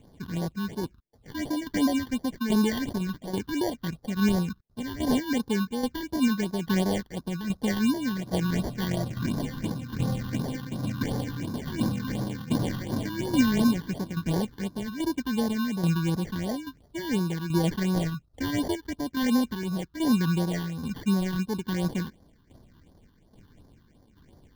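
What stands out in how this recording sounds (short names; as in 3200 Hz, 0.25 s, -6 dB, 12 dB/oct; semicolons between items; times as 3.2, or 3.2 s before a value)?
aliases and images of a low sample rate 1300 Hz, jitter 0%; tremolo saw down 1.2 Hz, depth 60%; phasing stages 6, 2.8 Hz, lowest notch 590–2600 Hz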